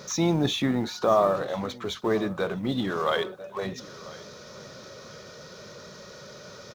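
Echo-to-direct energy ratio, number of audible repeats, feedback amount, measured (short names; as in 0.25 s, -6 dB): -19.5 dB, 2, 32%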